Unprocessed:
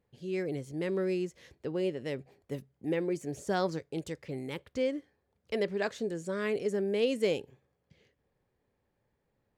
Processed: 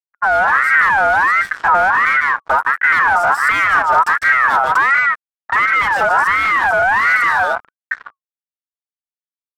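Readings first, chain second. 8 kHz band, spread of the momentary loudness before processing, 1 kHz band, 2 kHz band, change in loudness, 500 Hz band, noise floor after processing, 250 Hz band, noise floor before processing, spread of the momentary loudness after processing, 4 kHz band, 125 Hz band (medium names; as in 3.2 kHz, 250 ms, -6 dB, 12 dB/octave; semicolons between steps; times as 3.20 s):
+13.5 dB, 10 LU, +32.0 dB, +32.0 dB, +21.0 dB, +7.5 dB, under -85 dBFS, -4.0 dB, -79 dBFS, 6 LU, +13.0 dB, +1.5 dB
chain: level rider gain up to 15.5 dB; rippled EQ curve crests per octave 1.5, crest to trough 11 dB; delay 152 ms -8 dB; compression 3:1, threshold -31 dBFS, peak gain reduction 17.5 dB; fuzz box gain 37 dB, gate -45 dBFS; tilt shelf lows +9.5 dB, about 660 Hz; level-controlled noise filter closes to 530 Hz, open at -12 dBFS; ring modulator with a swept carrier 1.4 kHz, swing 25%, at 1.4 Hz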